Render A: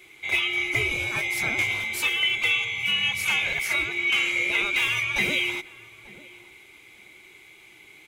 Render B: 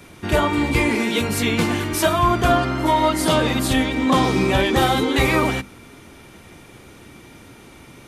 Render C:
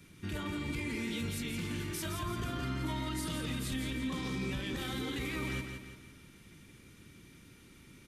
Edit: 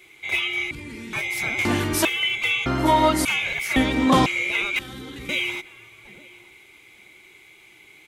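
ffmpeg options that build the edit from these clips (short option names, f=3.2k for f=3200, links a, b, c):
-filter_complex "[2:a]asplit=2[a][b];[1:a]asplit=3[c][d][e];[0:a]asplit=6[f][g][h][i][j][k];[f]atrim=end=0.712[l];[a]atrim=start=0.708:end=1.132[m];[g]atrim=start=1.128:end=1.652[n];[c]atrim=start=1.648:end=2.052[o];[h]atrim=start=2.048:end=2.662[p];[d]atrim=start=2.658:end=3.252[q];[i]atrim=start=3.248:end=3.762[r];[e]atrim=start=3.758:end=4.262[s];[j]atrim=start=4.258:end=4.792[t];[b]atrim=start=4.788:end=5.292[u];[k]atrim=start=5.288[v];[l][m]acrossfade=d=0.004:c1=hsin:c2=hsin[w];[w][n]acrossfade=d=0.004:c1=hsin:c2=hsin[x];[x][o]acrossfade=d=0.004:c1=hsin:c2=hsin[y];[y][p]acrossfade=d=0.004:c1=hsin:c2=hsin[z];[z][q]acrossfade=d=0.004:c1=hsin:c2=hsin[aa];[aa][r]acrossfade=d=0.004:c1=hsin:c2=hsin[ab];[ab][s]acrossfade=d=0.004:c1=hsin:c2=hsin[ac];[ac][t]acrossfade=d=0.004:c1=hsin:c2=hsin[ad];[ad][u]acrossfade=d=0.004:c1=hsin:c2=hsin[ae];[ae][v]acrossfade=d=0.004:c1=hsin:c2=hsin"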